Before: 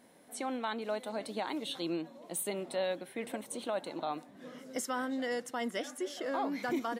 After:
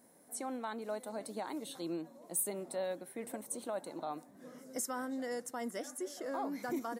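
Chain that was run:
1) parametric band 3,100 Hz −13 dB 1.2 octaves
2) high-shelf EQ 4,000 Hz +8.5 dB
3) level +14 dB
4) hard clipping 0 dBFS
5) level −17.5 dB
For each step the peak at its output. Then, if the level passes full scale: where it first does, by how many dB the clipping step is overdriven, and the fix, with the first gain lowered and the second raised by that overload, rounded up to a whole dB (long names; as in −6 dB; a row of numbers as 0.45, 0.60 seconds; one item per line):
−24.5, −18.0, −4.0, −4.0, −21.5 dBFS
no step passes full scale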